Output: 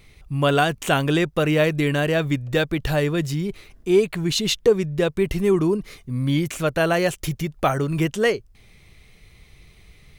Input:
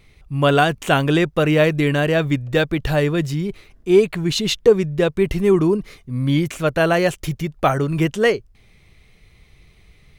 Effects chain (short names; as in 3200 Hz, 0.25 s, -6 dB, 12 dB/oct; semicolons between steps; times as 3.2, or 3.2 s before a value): high shelf 5000 Hz +5 dB; in parallel at -0.5 dB: compressor, threshold -27 dBFS, peak gain reduction 18.5 dB; on the sum: gain -5 dB